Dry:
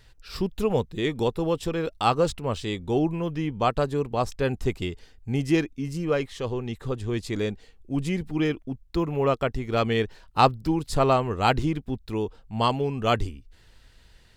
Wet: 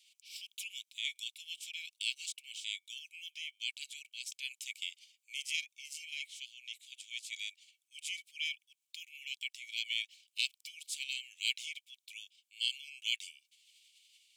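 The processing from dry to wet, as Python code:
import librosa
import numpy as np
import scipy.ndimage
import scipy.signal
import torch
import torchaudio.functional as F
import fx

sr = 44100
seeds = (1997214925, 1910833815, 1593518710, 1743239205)

y = fx.spec_clip(x, sr, under_db=17)
y = scipy.signal.sosfilt(scipy.signal.cheby1(6, 6, 2200.0, 'highpass', fs=sr, output='sos'), y)
y = F.gain(torch.from_numpy(y), -5.5).numpy()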